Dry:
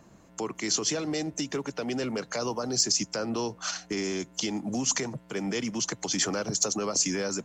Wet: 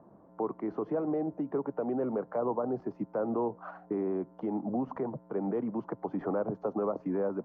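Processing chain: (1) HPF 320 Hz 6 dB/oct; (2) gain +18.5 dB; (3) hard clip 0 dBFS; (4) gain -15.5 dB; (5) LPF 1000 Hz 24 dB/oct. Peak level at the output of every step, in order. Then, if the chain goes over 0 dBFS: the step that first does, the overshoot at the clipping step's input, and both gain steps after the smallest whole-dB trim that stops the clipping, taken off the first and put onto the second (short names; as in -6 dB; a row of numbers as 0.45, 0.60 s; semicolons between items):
-11.0, +7.5, 0.0, -15.5, -20.0 dBFS; step 2, 7.5 dB; step 2 +10.5 dB, step 4 -7.5 dB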